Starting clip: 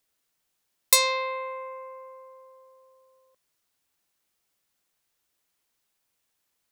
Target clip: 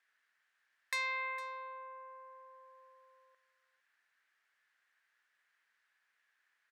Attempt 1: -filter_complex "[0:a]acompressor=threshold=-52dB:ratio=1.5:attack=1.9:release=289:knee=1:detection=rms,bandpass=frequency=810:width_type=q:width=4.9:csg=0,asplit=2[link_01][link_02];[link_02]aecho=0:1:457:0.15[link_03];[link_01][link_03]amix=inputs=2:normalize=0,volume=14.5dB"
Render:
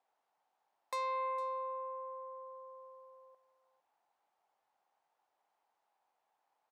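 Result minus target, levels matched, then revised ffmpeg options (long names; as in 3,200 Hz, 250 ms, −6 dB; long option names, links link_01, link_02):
2,000 Hz band −12.5 dB
-filter_complex "[0:a]acompressor=threshold=-52dB:ratio=1.5:attack=1.9:release=289:knee=1:detection=rms,bandpass=frequency=1700:width_type=q:width=4.9:csg=0,asplit=2[link_01][link_02];[link_02]aecho=0:1:457:0.15[link_03];[link_01][link_03]amix=inputs=2:normalize=0,volume=14.5dB"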